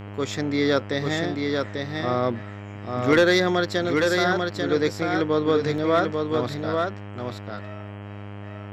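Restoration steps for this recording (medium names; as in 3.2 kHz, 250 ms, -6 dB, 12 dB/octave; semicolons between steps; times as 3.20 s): clip repair -9.5 dBFS; de-hum 101.5 Hz, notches 32; interpolate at 5.78 s, 2.1 ms; inverse comb 842 ms -4 dB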